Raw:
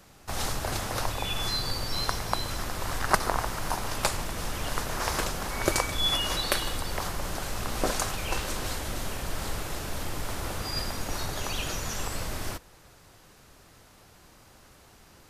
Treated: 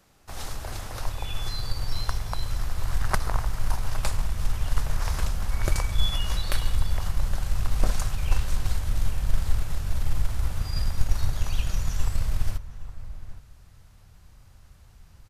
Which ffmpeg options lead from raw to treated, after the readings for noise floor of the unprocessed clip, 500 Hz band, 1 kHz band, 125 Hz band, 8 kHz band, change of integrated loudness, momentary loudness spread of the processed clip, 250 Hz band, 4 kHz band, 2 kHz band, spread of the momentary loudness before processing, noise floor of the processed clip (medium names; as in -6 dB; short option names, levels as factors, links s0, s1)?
-55 dBFS, -7.5 dB, -6.0 dB, +7.0 dB, -5.5 dB, 0.0 dB, 8 LU, -4.0 dB, -6.0 dB, -5.5 dB, 8 LU, -52 dBFS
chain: -filter_complex "[0:a]asubboost=boost=8.5:cutoff=110,asplit=2[s0][s1];[s1]adelay=816.3,volume=0.251,highshelf=f=4000:g=-18.4[s2];[s0][s2]amix=inputs=2:normalize=0,aeval=exprs='0.75*(cos(1*acos(clip(val(0)/0.75,-1,1)))-cos(1*PI/2))+0.0668*(cos(3*acos(clip(val(0)/0.75,-1,1)))-cos(3*PI/2))+0.00596*(cos(7*acos(clip(val(0)/0.75,-1,1)))-cos(7*PI/2))+0.00841*(cos(8*acos(clip(val(0)/0.75,-1,1)))-cos(8*PI/2))':c=same,volume=0.668"